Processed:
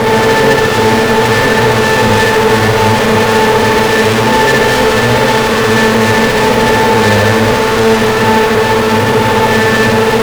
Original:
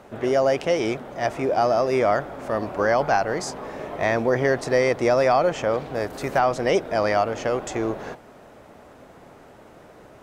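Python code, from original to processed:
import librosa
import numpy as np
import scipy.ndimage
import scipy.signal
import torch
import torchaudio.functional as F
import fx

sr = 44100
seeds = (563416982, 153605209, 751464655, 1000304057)

p1 = fx.bin_compress(x, sr, power=0.2)
p2 = fx.octave_resonator(p1, sr, note='A', decay_s=0.29)
p3 = fx.fuzz(p2, sr, gain_db=46.0, gate_db=-55.0)
p4 = p3 + fx.room_flutter(p3, sr, wall_m=11.5, rt60_s=0.89, dry=0)
y = p4 * librosa.db_to_amplitude(3.5)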